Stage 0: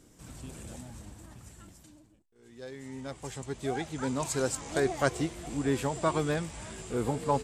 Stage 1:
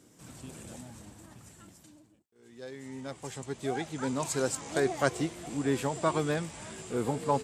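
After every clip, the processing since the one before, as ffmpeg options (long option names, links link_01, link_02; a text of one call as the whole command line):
ffmpeg -i in.wav -af "highpass=110" out.wav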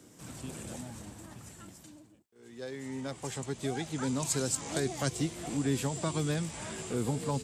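ffmpeg -i in.wav -filter_complex "[0:a]acrossover=split=250|3000[link_01][link_02][link_03];[link_02]acompressor=threshold=-40dB:ratio=4[link_04];[link_01][link_04][link_03]amix=inputs=3:normalize=0,volume=3.5dB" out.wav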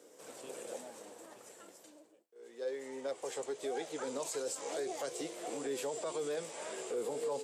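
ffmpeg -i in.wav -af "highpass=frequency=480:width_type=q:width=3.9,alimiter=level_in=1.5dB:limit=-24dB:level=0:latency=1:release=33,volume=-1.5dB,flanger=delay=6.7:depth=9.5:regen=-67:speed=0.34:shape=triangular" out.wav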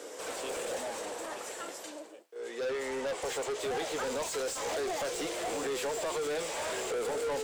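ffmpeg -i in.wav -filter_complex "[0:a]asplit=2[link_01][link_02];[link_02]highpass=frequency=720:poles=1,volume=26dB,asoftclip=type=tanh:threshold=-27dB[link_03];[link_01][link_03]amix=inputs=2:normalize=0,lowpass=frequency=4300:poles=1,volume=-6dB" out.wav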